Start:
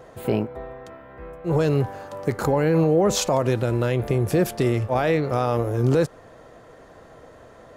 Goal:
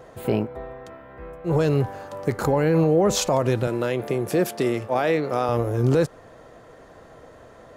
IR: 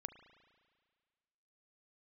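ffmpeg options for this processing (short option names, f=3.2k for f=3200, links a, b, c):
-filter_complex "[0:a]asettb=1/sr,asplit=3[a][b][c];[a]atrim=end=3.674[d];[b]atrim=start=3.67:end=5.49,asetpts=PTS-STARTPTS,afade=t=in:d=0.004:c=qsin,afade=t=out:st=1.816:d=0.004:c=qsin,highpass=200[e];[c]atrim=start=5.486[f];[d][e]acrossfade=d=0.004:c1=hsin:c2=qsin[g];[g][f]acrossfade=d=0.004:c1=qsin:c2=hsin"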